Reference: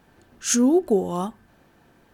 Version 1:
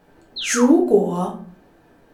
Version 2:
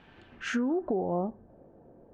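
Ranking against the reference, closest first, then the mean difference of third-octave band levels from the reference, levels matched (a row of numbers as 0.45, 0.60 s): 1, 2; 4.5, 7.0 dB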